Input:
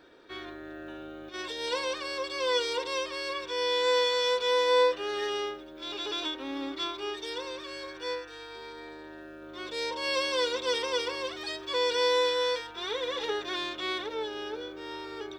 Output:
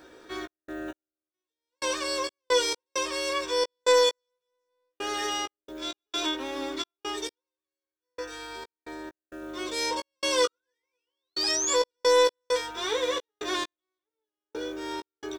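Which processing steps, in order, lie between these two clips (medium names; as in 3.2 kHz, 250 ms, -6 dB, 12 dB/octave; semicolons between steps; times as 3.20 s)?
resonant high shelf 5.3 kHz +8 dB, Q 1.5; de-hum 137.3 Hz, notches 3; in parallel at -3.5 dB: saturation -26 dBFS, distortion -10 dB; on the sum: painted sound rise, 10.44–11.75 s, 1.2–7.5 kHz -29 dBFS; trance gate "xx.x....xx.x.x" 66 bpm -60 dB; doubling 16 ms -6.5 dB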